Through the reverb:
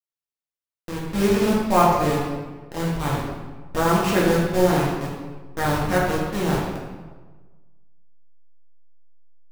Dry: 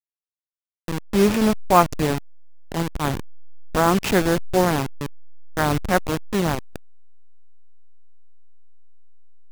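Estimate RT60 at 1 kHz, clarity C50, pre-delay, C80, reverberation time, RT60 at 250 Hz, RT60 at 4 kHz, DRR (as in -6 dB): 1.3 s, 0.5 dB, 3 ms, 3.0 dB, 1.3 s, 1.4 s, 0.90 s, -5.5 dB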